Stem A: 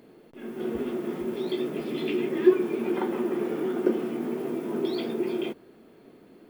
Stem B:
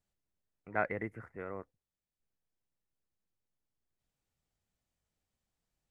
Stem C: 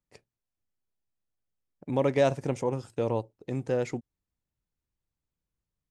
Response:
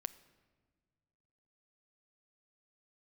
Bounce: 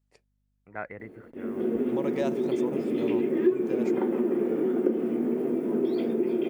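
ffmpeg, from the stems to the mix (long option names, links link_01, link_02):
-filter_complex "[0:a]equalizer=frequency=125:width_type=o:width=1:gain=4,equalizer=frequency=250:width_type=o:width=1:gain=10,equalizer=frequency=500:width_type=o:width=1:gain=9,equalizer=frequency=2000:width_type=o:width=1:gain=4,equalizer=frequency=4000:width_type=o:width=1:gain=-5,adelay=1000,volume=-6.5dB[link_01];[1:a]volume=-4dB[link_02];[2:a]highpass=frequency=210:poles=1,aeval=exprs='val(0)+0.000447*(sin(2*PI*50*n/s)+sin(2*PI*2*50*n/s)/2+sin(2*PI*3*50*n/s)/3+sin(2*PI*4*50*n/s)/4+sin(2*PI*5*50*n/s)/5)':channel_layout=same,volume=-6dB[link_03];[link_01][link_02][link_03]amix=inputs=3:normalize=0,acompressor=threshold=-22dB:ratio=2.5"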